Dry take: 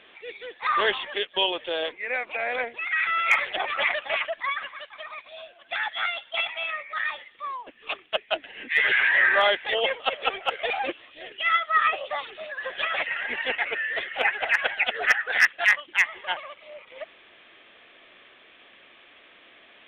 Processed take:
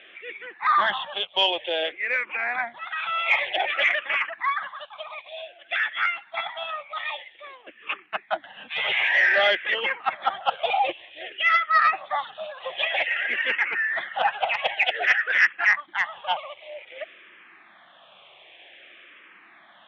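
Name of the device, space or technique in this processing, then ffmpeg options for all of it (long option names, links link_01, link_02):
barber-pole phaser into a guitar amplifier: -filter_complex "[0:a]asplit=2[link_01][link_02];[link_02]afreqshift=-0.53[link_03];[link_01][link_03]amix=inputs=2:normalize=1,asoftclip=type=tanh:threshold=-17dB,highpass=110,equalizer=frequency=120:width_type=q:width=4:gain=-4,equalizer=frequency=260:width_type=q:width=4:gain=-9,equalizer=frequency=440:width_type=q:width=4:gain=-8,equalizer=frequency=790:width_type=q:width=4:gain=4,lowpass=frequency=4300:width=0.5412,lowpass=frequency=4300:width=1.3066,volume=5.5dB"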